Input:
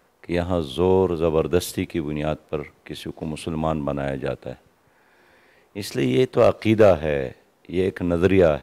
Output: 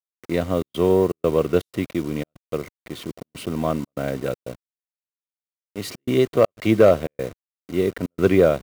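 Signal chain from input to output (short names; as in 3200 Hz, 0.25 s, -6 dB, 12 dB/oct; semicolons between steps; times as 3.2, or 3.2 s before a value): level-crossing sampler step -35 dBFS; notch comb 840 Hz; step gate ".xxxx.xxx.xxx" 121 bpm -60 dB; gain +1 dB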